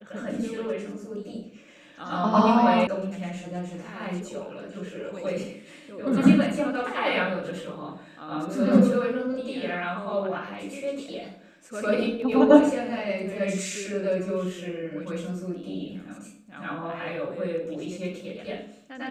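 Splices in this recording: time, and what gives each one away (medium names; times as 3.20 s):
2.87 s: sound stops dead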